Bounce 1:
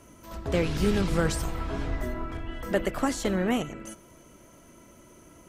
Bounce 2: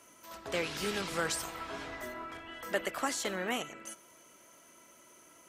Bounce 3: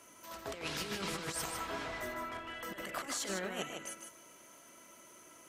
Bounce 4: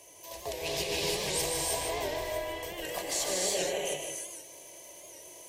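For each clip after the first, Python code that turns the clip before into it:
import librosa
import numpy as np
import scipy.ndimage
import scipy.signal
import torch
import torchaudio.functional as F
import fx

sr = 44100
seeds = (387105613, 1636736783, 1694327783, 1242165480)

y1 = fx.highpass(x, sr, hz=1100.0, slope=6)
y2 = fx.over_compress(y1, sr, threshold_db=-37.0, ratio=-0.5)
y2 = y2 + 10.0 ** (-6.0 / 20.0) * np.pad(y2, (int(153 * sr / 1000.0), 0))[:len(y2)]
y2 = y2 * 10.0 ** (-2.0 / 20.0)
y3 = fx.fixed_phaser(y2, sr, hz=560.0, stages=4)
y3 = fx.rev_gated(y3, sr, seeds[0], gate_ms=350, shape='rising', drr_db=-2.0)
y3 = fx.record_warp(y3, sr, rpm=78.0, depth_cents=100.0)
y3 = y3 * 10.0 ** (6.5 / 20.0)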